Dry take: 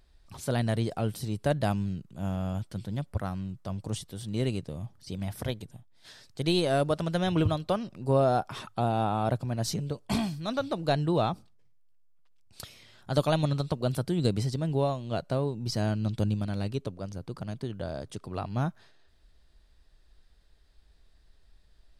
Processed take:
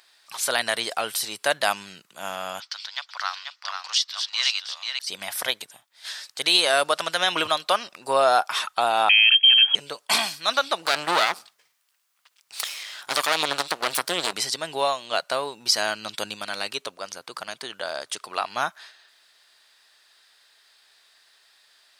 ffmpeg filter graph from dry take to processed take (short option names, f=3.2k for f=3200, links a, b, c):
-filter_complex "[0:a]asettb=1/sr,asplit=3[a][b][c];[a]atrim=end=2.604[d];[b]atrim=start=2.6:end=4.99,asetpts=PTS-STARTPTS,afade=t=in:d=0.004:c=qsin,afade=t=out:st=2.386:d=0.004:c=qsin,highpass=f=930:w=0.5412,highpass=f=930:w=1.3066,highshelf=f=7.2k:t=q:w=3:g=-13.5,aecho=1:1:488:0.531,atrim=end_sample=105399[e];[c]atrim=start=4.986[f];[d][e]acrossfade=d=0.004:c1=hsin:c2=qsin[g];[g][f]acrossfade=d=0.004:c1=qsin:c2=hsin,asettb=1/sr,asplit=3[h][i][j];[h]atrim=end=9.094[k];[i]atrim=start=9.09:end=9.75,asetpts=PTS-STARTPTS,afade=t=in:d=0.004:c=qsin,afade=t=out:st=0.656:d=0.004:c=qsin,agate=range=-33dB:threshold=-33dB:ratio=3:release=100:detection=peak,aecho=1:1:1.2:0.63,atrim=end_sample=29106,lowpass=f=2.8k:t=q:w=0.5098,lowpass=f=2.8k:t=q:w=0.6013,lowpass=f=2.8k:t=q:w=0.9,lowpass=f=2.8k:t=q:w=2.563,afreqshift=-3300[l];[j]atrim=start=9.746[m];[k][l]acrossfade=d=0.004:c1=hsin:c2=qsin[n];[n][m]acrossfade=d=0.004:c1=qsin:c2=hsin,asettb=1/sr,asplit=3[o][p][q];[o]atrim=end=10.854[r];[p]atrim=start=10.85:end=14.33,asetpts=PTS-STARTPTS,afade=t=in:d=0.004:c=qsin,afade=t=out:st=3.476:d=0.004:c=qsin,acontrast=46,aeval=exprs='max(val(0),0)':c=same[s];[q]atrim=start=14.326[t];[r][s]acrossfade=d=0.004:c1=hsin:c2=qsin[u];[u][t]acrossfade=d=0.004:c1=qsin:c2=hsin,highpass=1.2k,alimiter=level_in=23dB:limit=-1dB:release=50:level=0:latency=1,volume=-6.5dB"